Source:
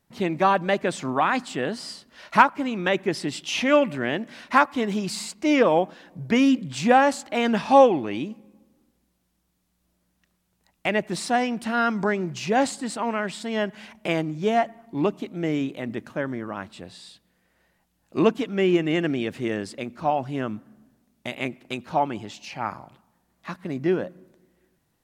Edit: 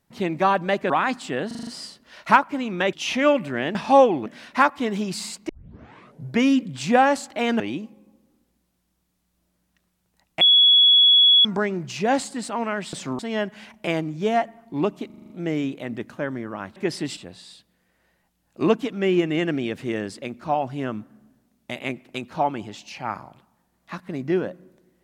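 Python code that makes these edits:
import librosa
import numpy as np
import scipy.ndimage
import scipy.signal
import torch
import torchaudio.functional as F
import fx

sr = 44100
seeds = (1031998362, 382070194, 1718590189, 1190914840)

y = fx.edit(x, sr, fx.move(start_s=0.9, length_s=0.26, to_s=13.4),
    fx.stutter(start_s=1.73, slice_s=0.04, count=6),
    fx.move(start_s=2.99, length_s=0.41, to_s=16.73),
    fx.tape_start(start_s=5.45, length_s=0.81),
    fx.move(start_s=7.56, length_s=0.51, to_s=4.22),
    fx.bleep(start_s=10.88, length_s=1.04, hz=3370.0, db=-11.0),
    fx.stutter(start_s=15.27, slice_s=0.04, count=7), tone=tone)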